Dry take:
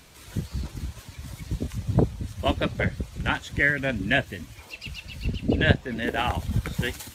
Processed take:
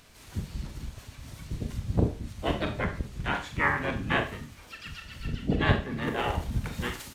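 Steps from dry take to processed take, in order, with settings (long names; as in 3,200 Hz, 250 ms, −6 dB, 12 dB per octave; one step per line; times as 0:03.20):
four-comb reverb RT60 0.37 s, combs from 27 ms, DRR 4.5 dB
pitch-shifted copies added −12 semitones −6 dB, −7 semitones −4 dB, +3 semitones −11 dB
level −7 dB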